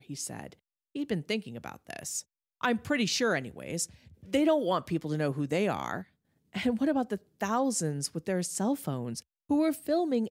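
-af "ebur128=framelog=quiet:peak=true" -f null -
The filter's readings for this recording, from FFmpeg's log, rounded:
Integrated loudness:
  I:         -30.9 LUFS
  Threshold: -41.4 LUFS
Loudness range:
  LRA:         2.6 LU
  Threshold: -51.1 LUFS
  LRA low:   -32.4 LUFS
  LRA high:  -29.9 LUFS
True peak:
  Peak:      -14.8 dBFS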